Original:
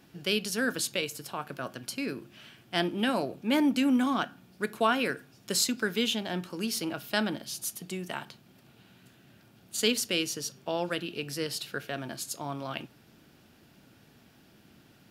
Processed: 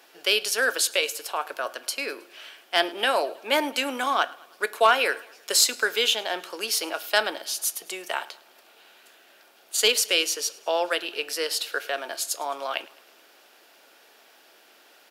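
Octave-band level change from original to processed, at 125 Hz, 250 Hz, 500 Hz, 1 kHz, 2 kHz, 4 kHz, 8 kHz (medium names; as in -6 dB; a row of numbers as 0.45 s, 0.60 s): under -20 dB, -9.5 dB, +5.5 dB, +8.0 dB, +8.0 dB, +8.0 dB, +8.0 dB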